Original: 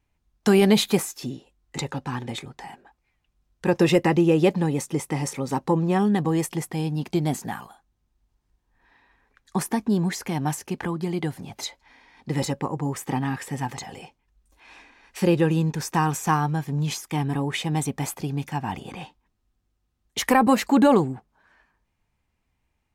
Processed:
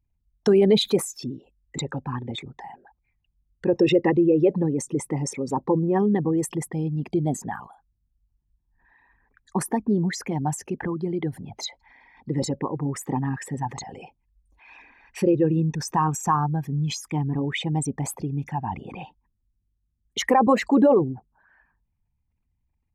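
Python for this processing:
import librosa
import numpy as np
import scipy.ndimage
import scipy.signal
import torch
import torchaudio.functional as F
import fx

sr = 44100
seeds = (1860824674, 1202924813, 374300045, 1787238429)

y = fx.envelope_sharpen(x, sr, power=2.0)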